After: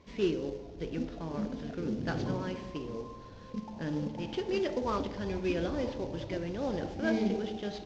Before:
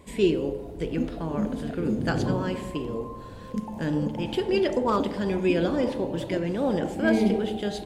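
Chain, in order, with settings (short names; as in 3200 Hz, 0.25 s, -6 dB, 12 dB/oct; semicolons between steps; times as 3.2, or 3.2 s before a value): CVSD 32 kbps; 4.82–7 resonant low shelf 130 Hz +7 dB, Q 1.5; gain -7.5 dB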